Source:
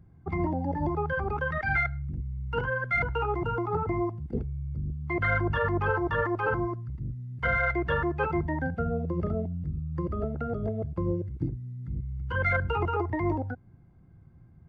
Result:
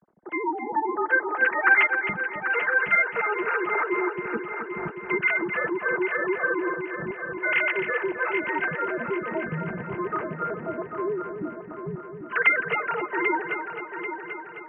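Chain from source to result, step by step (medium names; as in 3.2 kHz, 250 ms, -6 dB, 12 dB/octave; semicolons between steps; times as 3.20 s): formants replaced by sine waves; treble shelf 3 kHz -11 dB; comb of notches 270 Hz; on a send: multi-head delay 263 ms, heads first and third, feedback 59%, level -9.5 dB; on the sum: trim +4.5 dB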